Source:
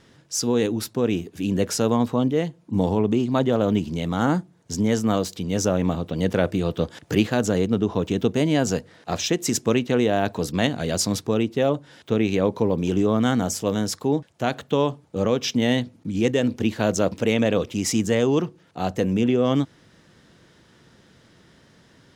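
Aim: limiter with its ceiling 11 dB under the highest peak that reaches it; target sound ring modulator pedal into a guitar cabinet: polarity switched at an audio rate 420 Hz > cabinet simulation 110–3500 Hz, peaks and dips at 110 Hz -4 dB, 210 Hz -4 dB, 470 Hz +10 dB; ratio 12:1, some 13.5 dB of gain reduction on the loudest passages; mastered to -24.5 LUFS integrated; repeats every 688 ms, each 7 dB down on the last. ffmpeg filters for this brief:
-af "acompressor=threshold=0.0355:ratio=12,alimiter=level_in=1.33:limit=0.0631:level=0:latency=1,volume=0.75,aecho=1:1:688|1376|2064|2752|3440:0.447|0.201|0.0905|0.0407|0.0183,aeval=exprs='val(0)*sgn(sin(2*PI*420*n/s))':c=same,highpass=110,equalizer=f=110:t=q:w=4:g=-4,equalizer=f=210:t=q:w=4:g=-4,equalizer=f=470:t=q:w=4:g=10,lowpass=f=3500:w=0.5412,lowpass=f=3500:w=1.3066,volume=3.98"

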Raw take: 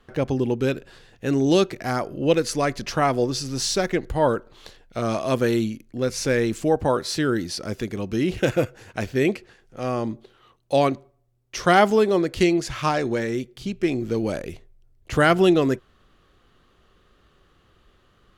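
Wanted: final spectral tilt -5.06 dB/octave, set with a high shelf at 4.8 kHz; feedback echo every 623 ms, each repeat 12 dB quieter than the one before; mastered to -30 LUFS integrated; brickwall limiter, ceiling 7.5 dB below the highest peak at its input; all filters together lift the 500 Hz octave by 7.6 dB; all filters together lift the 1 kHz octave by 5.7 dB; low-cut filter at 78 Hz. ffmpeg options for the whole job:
-af "highpass=78,equalizer=f=500:t=o:g=8.5,equalizer=f=1000:t=o:g=4,highshelf=f=4800:g=5.5,alimiter=limit=0.501:level=0:latency=1,aecho=1:1:623|1246|1869:0.251|0.0628|0.0157,volume=0.282"

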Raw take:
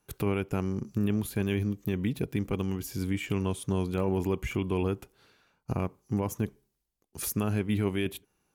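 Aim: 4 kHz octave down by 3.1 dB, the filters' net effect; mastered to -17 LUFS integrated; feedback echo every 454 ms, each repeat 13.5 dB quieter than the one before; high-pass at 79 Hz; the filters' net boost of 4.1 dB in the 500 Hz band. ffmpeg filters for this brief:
-af "highpass=79,equalizer=f=500:t=o:g=5.5,equalizer=f=4000:t=o:g=-4.5,aecho=1:1:454|908:0.211|0.0444,volume=4.22"

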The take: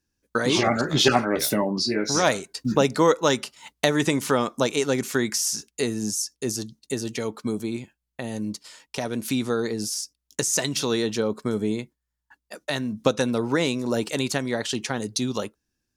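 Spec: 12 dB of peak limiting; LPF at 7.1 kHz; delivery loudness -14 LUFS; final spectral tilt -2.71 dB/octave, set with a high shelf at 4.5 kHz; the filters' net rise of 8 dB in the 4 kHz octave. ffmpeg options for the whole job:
-af "lowpass=7100,equalizer=f=4000:t=o:g=6.5,highshelf=f=4500:g=7,volume=2.99,alimiter=limit=1:level=0:latency=1"

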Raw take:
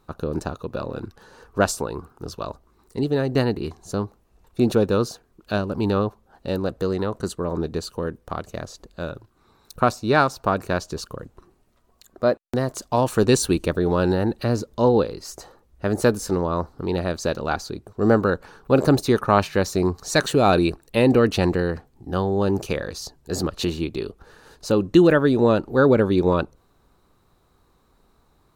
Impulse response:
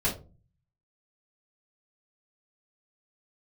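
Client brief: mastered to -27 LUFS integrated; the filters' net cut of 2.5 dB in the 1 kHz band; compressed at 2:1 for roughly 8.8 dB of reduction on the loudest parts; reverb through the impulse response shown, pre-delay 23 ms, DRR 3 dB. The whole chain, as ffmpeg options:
-filter_complex "[0:a]equalizer=f=1000:t=o:g=-3.5,acompressor=threshold=0.0447:ratio=2,asplit=2[s0][s1];[1:a]atrim=start_sample=2205,adelay=23[s2];[s1][s2]afir=irnorm=-1:irlink=0,volume=0.251[s3];[s0][s3]amix=inputs=2:normalize=0,volume=0.891"

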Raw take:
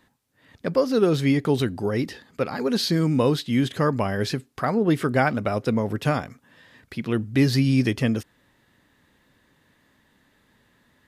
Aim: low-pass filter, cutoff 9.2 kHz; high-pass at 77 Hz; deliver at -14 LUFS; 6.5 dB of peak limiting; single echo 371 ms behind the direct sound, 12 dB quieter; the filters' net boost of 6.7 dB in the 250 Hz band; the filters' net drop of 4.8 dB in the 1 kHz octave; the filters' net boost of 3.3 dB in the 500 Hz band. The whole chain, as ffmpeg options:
-af "highpass=77,lowpass=9200,equalizer=f=250:t=o:g=7.5,equalizer=f=500:t=o:g=3.5,equalizer=f=1000:t=o:g=-9,alimiter=limit=0.316:level=0:latency=1,aecho=1:1:371:0.251,volume=2.11"

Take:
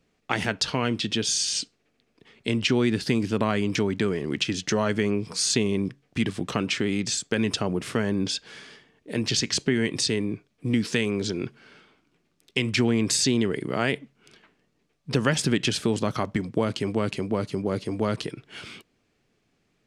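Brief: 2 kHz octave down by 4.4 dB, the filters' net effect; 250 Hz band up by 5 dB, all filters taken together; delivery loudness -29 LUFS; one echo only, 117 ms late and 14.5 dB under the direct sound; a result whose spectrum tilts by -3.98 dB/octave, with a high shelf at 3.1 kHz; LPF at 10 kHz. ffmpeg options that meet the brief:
-af "lowpass=10000,equalizer=f=250:t=o:g=6,equalizer=f=2000:t=o:g=-9,highshelf=f=3100:g=8,aecho=1:1:117:0.188,volume=0.447"

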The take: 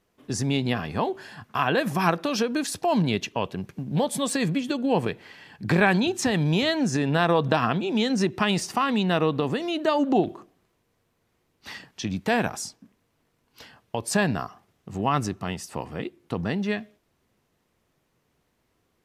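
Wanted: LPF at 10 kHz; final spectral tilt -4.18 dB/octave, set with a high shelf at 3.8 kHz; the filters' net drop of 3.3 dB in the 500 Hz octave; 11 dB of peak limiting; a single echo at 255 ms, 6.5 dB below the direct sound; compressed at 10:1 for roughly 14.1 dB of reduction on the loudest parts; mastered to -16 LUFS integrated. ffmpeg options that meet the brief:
-af "lowpass=10000,equalizer=f=500:t=o:g=-4.5,highshelf=f=3800:g=6,acompressor=threshold=0.0251:ratio=10,alimiter=level_in=1.33:limit=0.0631:level=0:latency=1,volume=0.75,aecho=1:1:255:0.473,volume=11.2"

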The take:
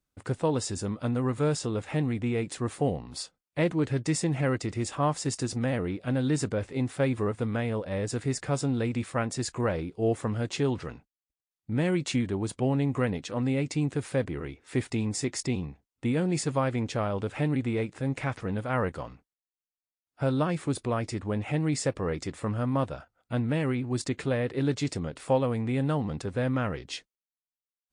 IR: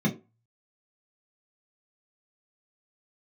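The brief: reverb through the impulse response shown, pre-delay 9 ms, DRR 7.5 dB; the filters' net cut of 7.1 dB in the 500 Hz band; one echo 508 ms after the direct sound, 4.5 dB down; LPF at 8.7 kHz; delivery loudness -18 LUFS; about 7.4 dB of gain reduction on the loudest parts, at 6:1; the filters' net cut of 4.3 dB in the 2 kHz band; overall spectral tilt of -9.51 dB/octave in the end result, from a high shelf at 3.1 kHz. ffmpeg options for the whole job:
-filter_complex "[0:a]lowpass=8700,equalizer=f=500:t=o:g=-8.5,equalizer=f=2000:t=o:g=-7,highshelf=f=3100:g=5.5,acompressor=threshold=0.0251:ratio=6,aecho=1:1:508:0.596,asplit=2[s0][s1];[1:a]atrim=start_sample=2205,adelay=9[s2];[s1][s2]afir=irnorm=-1:irlink=0,volume=0.141[s3];[s0][s3]amix=inputs=2:normalize=0,volume=3.76"

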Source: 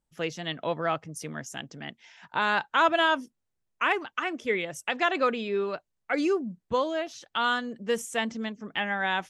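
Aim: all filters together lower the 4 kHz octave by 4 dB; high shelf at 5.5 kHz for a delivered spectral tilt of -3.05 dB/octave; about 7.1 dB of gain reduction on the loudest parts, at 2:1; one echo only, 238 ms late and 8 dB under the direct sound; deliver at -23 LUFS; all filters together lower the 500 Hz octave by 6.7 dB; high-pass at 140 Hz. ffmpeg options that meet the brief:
-af "highpass=140,equalizer=f=500:t=o:g=-9,equalizer=f=4000:t=o:g=-7.5,highshelf=f=5500:g=5.5,acompressor=threshold=0.0224:ratio=2,aecho=1:1:238:0.398,volume=3.98"

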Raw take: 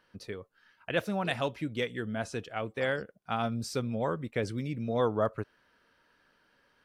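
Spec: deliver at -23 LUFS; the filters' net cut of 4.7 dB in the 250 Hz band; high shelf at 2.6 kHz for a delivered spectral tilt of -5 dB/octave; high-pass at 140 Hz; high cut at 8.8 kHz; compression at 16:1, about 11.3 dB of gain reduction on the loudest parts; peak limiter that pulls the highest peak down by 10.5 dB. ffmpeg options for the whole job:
-af "highpass=140,lowpass=8800,equalizer=f=250:t=o:g=-5,highshelf=f=2600:g=-5,acompressor=threshold=0.0178:ratio=16,volume=11.9,alimiter=limit=0.282:level=0:latency=1"

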